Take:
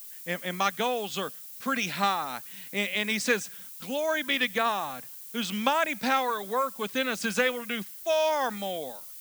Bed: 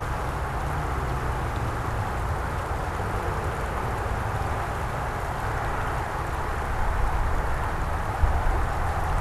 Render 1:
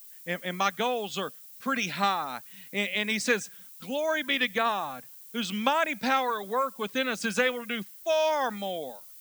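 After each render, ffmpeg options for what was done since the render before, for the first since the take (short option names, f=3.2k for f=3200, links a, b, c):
-af "afftdn=nr=6:nf=-44"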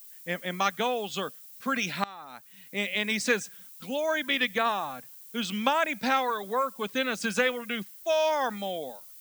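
-filter_complex "[0:a]asplit=2[a][b];[a]atrim=end=2.04,asetpts=PTS-STARTPTS,afade=t=out:st=2.036:d=0.004:c=hsin:silence=0.0668344[c];[b]atrim=start=2.04,asetpts=PTS-STARTPTS,afade=t=in:d=0.89:silence=0.0668344[d];[c][d]concat=n=2:v=0:a=1"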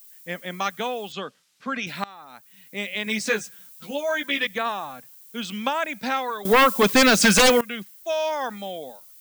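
-filter_complex "[0:a]asettb=1/sr,asplit=3[a][b][c];[a]atrim=end=1.124[d];[b]atrim=start=1.12:end=1.87,asetpts=PTS-STARTPTS,afade=t=in:d=0.004:c=qsin,afade=t=out:st=0.746:d=0.004:c=qsin,highpass=100,lowpass=4.8k[e];[c]atrim=start=1.866[f];[d][e]acrossfade=d=0.004:c1=hsin:c2=qsin[g];[g][f]acrossfade=d=0.004:c1=qsin:c2=hsin,asettb=1/sr,asplit=3[h][i][j];[h]atrim=end=3.054[k];[i]atrim=start=3.05:end=4.47,asetpts=PTS-STARTPTS,afade=t=in:d=0.004:c=qsin,afade=t=out:st=1.416:d=0.004:c=qsin,asplit=2[l][m];[m]adelay=14,volume=-3dB[n];[l][n]amix=inputs=2:normalize=0,atrim=end_sample=62622[o];[j]atrim=start=4.466[p];[k][o]acrossfade=d=0.004:c1=hsin:c2=qsin[q];[q][p]acrossfade=d=0.004:c1=qsin:c2=hsin,asettb=1/sr,asplit=3[r][s][t];[r]atrim=end=6.454[u];[s]atrim=start=6.45:end=7.61,asetpts=PTS-STARTPTS,afade=t=in:d=0.004:c=qsin,afade=t=out:st=1.156:d=0.004:c=qsin,aeval=exprs='0.282*sin(PI/2*5.01*val(0)/0.282)':c=same[v];[t]atrim=start=7.606[w];[u][v]acrossfade=d=0.004:c1=hsin:c2=qsin[x];[x][w]acrossfade=d=0.004:c1=qsin:c2=hsin"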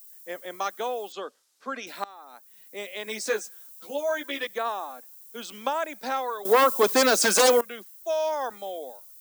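-af "highpass=f=320:w=0.5412,highpass=f=320:w=1.3066,equalizer=f=2.5k:t=o:w=1.5:g=-10"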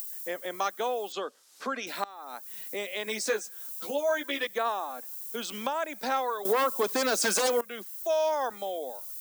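-af "alimiter=limit=-16.5dB:level=0:latency=1:release=344,acompressor=mode=upward:threshold=-29dB:ratio=2.5"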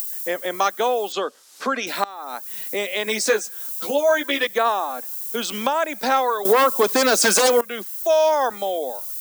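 -af "volume=9.5dB"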